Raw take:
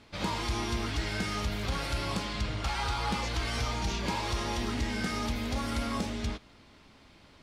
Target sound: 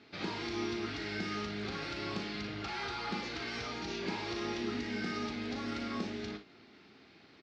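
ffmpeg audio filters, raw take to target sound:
ffmpeg -i in.wav -filter_complex "[0:a]asplit=2[link_01][link_02];[link_02]acompressor=threshold=-39dB:ratio=6,volume=-1dB[link_03];[link_01][link_03]amix=inputs=2:normalize=0,highpass=180,equalizer=frequency=380:width_type=q:width=4:gain=6,equalizer=frequency=560:width_type=q:width=4:gain=-8,equalizer=frequency=1000:width_type=q:width=4:gain=-9,equalizer=frequency=3200:width_type=q:width=4:gain=-4,lowpass=frequency=5100:width=0.5412,lowpass=frequency=5100:width=1.3066,aecho=1:1:38|58:0.376|0.316,volume=-6dB" out.wav

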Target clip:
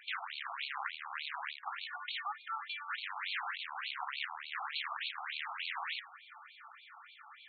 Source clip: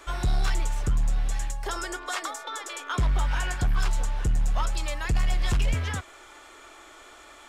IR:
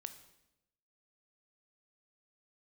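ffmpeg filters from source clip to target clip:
-af "aeval=exprs='(mod(18.8*val(0)+1,2)-1)/18.8':channel_layout=same,bandreject=frequency=185.7:width_type=h:width=4,bandreject=frequency=371.4:width_type=h:width=4,bandreject=frequency=557.1:width_type=h:width=4,bandreject=frequency=742.8:width_type=h:width=4,bandreject=frequency=928.5:width_type=h:width=4,bandreject=frequency=1114.2:width_type=h:width=4,bandreject=frequency=1299.9:width_type=h:width=4,bandreject=frequency=1485.6:width_type=h:width=4,bandreject=frequency=1671.3:width_type=h:width=4,bandreject=frequency=1857:width_type=h:width=4,bandreject=frequency=2042.7:width_type=h:width=4,afftfilt=real='re*between(b*sr/1024,960*pow(3200/960,0.5+0.5*sin(2*PI*3.4*pts/sr))/1.41,960*pow(3200/960,0.5+0.5*sin(2*PI*3.4*pts/sr))*1.41)':imag='im*between(b*sr/1024,960*pow(3200/960,0.5+0.5*sin(2*PI*3.4*pts/sr))/1.41,960*pow(3200/960,0.5+0.5*sin(2*PI*3.4*pts/sr))*1.41)':win_size=1024:overlap=0.75,volume=-1dB"

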